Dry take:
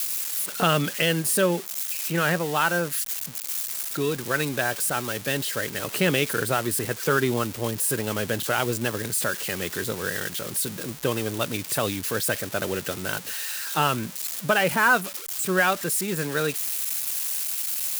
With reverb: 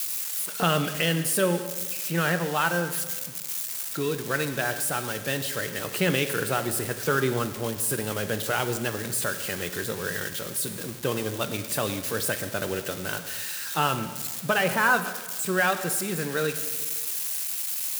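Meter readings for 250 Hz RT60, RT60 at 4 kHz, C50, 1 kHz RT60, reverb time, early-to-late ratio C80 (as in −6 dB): 1.7 s, 1.3 s, 10.5 dB, 1.4 s, 1.5 s, 11.5 dB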